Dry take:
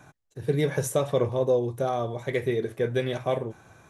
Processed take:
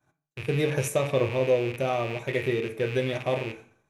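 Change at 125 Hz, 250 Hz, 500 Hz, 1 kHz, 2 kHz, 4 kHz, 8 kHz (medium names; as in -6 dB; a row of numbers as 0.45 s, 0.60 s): 0.0 dB, 0.0 dB, -0.5 dB, -0.5 dB, +4.5 dB, +3.0 dB, -0.5 dB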